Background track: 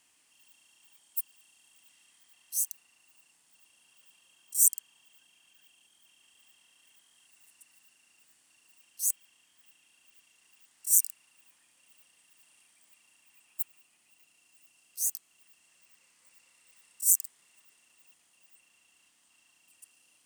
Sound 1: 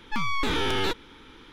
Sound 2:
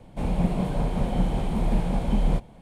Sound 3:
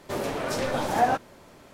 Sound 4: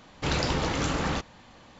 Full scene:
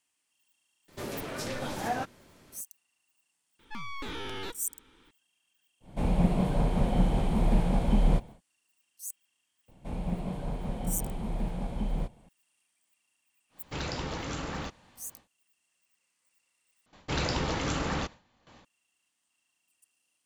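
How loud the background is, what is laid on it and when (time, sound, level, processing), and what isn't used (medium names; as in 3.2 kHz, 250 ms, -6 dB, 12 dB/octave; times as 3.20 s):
background track -11.5 dB
0.88 s: add 3 -4 dB + peaking EQ 730 Hz -6.5 dB 2 oct
3.59 s: add 1 -12 dB
5.80 s: add 2 -1 dB, fades 0.10 s
9.68 s: add 2 -9 dB
13.49 s: add 4 -8 dB, fades 0.10 s
16.86 s: replace with 4 -3 dB + gate with hold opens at -41 dBFS, closes at -49 dBFS, hold 11 ms, range -14 dB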